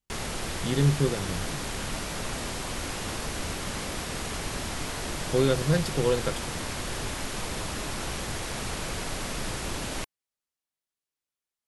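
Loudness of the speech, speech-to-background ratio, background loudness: -27.0 LUFS, 6.0 dB, -33.0 LUFS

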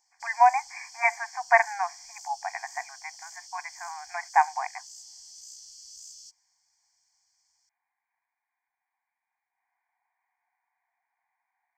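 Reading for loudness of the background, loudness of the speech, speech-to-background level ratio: -45.0 LUFS, -26.0 LUFS, 19.0 dB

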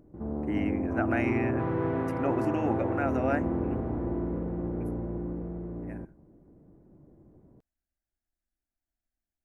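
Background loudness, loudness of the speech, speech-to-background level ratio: -31.5 LUFS, -32.5 LUFS, -1.0 dB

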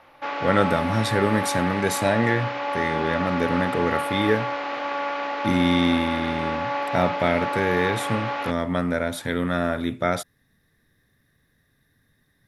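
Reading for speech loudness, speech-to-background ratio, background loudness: -24.5 LUFS, 3.0 dB, -27.5 LUFS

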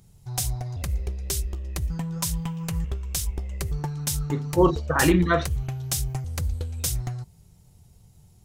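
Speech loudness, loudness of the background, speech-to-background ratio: -22.5 LUFS, -29.5 LUFS, 7.0 dB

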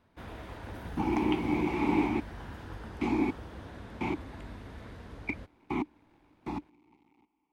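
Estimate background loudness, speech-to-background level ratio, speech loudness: -45.0 LUFS, 12.5 dB, -32.5 LUFS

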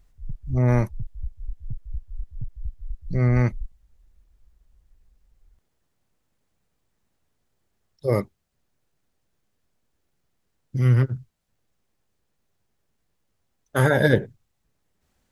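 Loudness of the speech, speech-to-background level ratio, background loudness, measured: -22.5 LUFS, 16.5 dB, -39.0 LUFS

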